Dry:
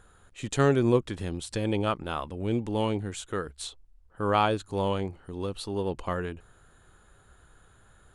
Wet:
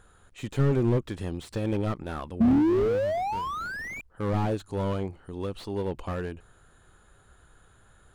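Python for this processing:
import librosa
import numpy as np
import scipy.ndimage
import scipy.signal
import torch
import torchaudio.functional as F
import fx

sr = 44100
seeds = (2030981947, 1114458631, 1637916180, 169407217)

y = fx.spec_paint(x, sr, seeds[0], shape='rise', start_s=2.4, length_s=1.61, low_hz=220.0, high_hz=2400.0, level_db=-16.0)
y = fx.slew_limit(y, sr, full_power_hz=31.0)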